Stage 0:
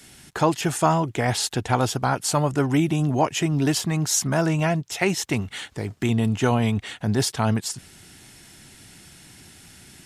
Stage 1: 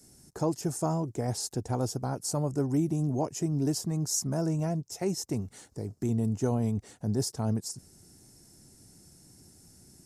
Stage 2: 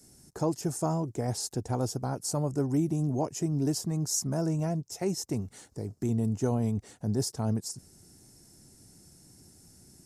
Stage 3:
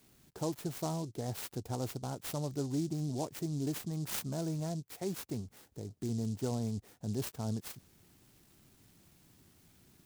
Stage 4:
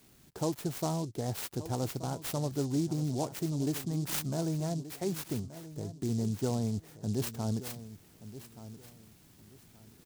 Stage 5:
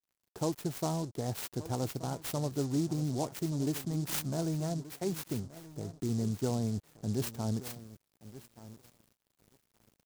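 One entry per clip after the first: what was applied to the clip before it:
drawn EQ curve 480 Hz 0 dB, 1,800 Hz −16 dB, 3,300 Hz −21 dB, 5,200 Hz −1 dB; level −6.5 dB
no processing that can be heard
short delay modulated by noise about 5,700 Hz, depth 0.065 ms; level −7 dB
repeating echo 1,177 ms, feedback 25%, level −14.5 dB; level +3.5 dB
dead-zone distortion −53 dBFS

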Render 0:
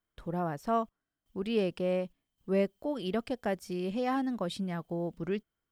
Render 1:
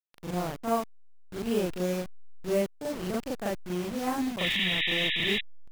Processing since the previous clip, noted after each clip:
hold until the input has moved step −34 dBFS
sound drawn into the spectrogram noise, 0:04.42–0:05.41, 1,700–3,900 Hz −30 dBFS
backwards echo 39 ms −4 dB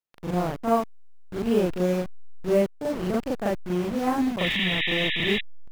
high-shelf EQ 2,800 Hz −9 dB
level +6 dB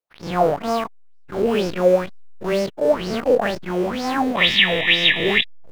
every bin's largest magnitude spread in time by 60 ms
in parallel at −6.5 dB: slack as between gear wheels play −37 dBFS
on the sum: auto-filter bell 2.1 Hz 460–5,400 Hz +18 dB
level −6 dB

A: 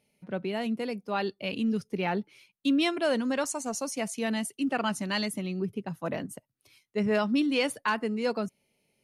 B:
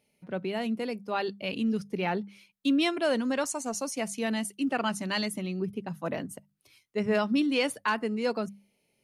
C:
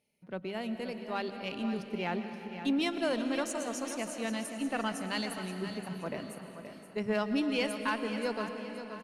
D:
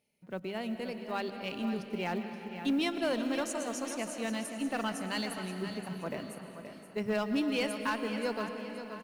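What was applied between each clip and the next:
mains-hum notches 50/100/150/200 Hz
harmonic generator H 2 −20 dB, 7 −32 dB, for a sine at −14.5 dBFS; repeating echo 525 ms, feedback 37%, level −10.5 dB; comb and all-pass reverb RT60 4 s, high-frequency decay 0.85×, pre-delay 80 ms, DRR 8 dB; level −5 dB
one scale factor per block 7 bits; hard clipping −23.5 dBFS, distortion −22 dB

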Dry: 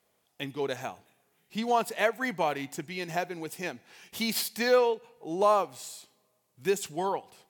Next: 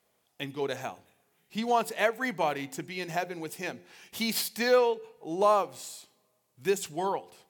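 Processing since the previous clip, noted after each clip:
hum removal 88.69 Hz, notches 6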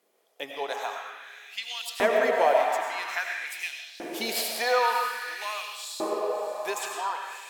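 feedback delay with all-pass diffusion 610 ms, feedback 50%, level −11.5 dB
comb and all-pass reverb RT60 2 s, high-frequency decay 0.65×, pre-delay 55 ms, DRR 0.5 dB
auto-filter high-pass saw up 0.5 Hz 290–4,100 Hz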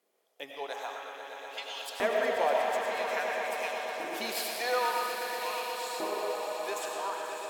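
echo that builds up and dies away 121 ms, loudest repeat 5, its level −12 dB
level −6 dB

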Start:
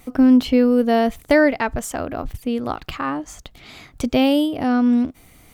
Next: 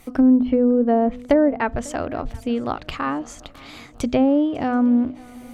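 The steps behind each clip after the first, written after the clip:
treble cut that deepens with the level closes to 650 Hz, closed at −11 dBFS
mains-hum notches 50/100/150/200/250 Hz
feedback echo with a long and a short gap by turns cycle 729 ms, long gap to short 3 to 1, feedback 43%, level −23 dB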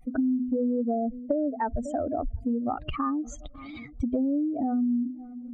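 expanding power law on the bin magnitudes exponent 2.6
downward compressor 6 to 1, threshold −24 dBFS, peak gain reduction 11.5 dB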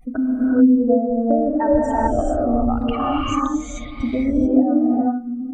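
reverb whose tail is shaped and stops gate 460 ms rising, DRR −5.5 dB
level +4 dB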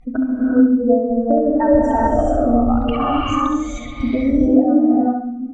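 low-pass filter 5,600 Hz 12 dB per octave
repeating echo 68 ms, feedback 45%, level −7 dB
level +2 dB

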